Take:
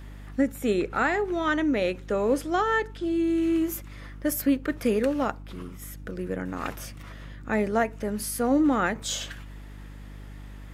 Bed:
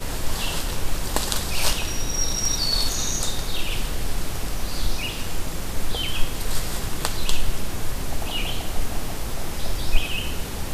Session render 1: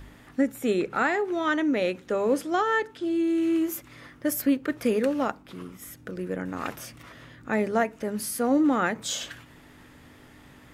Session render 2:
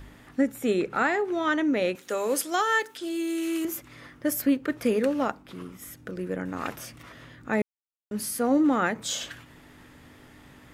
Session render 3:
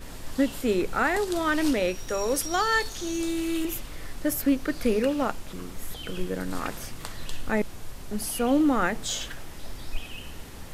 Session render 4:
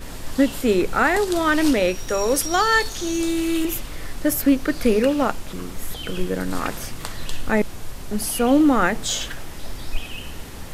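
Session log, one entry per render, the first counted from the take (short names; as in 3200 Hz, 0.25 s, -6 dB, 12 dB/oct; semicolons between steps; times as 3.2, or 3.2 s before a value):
de-hum 50 Hz, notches 4
1.95–3.65 RIAA curve recording; 7.62–8.11 mute
add bed -13 dB
gain +6 dB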